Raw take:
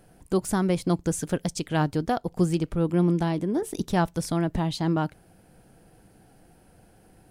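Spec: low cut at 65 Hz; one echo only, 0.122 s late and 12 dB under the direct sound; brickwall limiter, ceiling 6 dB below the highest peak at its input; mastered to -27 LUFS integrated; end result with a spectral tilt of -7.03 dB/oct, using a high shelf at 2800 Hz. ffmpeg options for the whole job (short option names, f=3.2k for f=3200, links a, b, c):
-af "highpass=65,highshelf=f=2.8k:g=-6,alimiter=limit=-17dB:level=0:latency=1,aecho=1:1:122:0.251,volume=1dB"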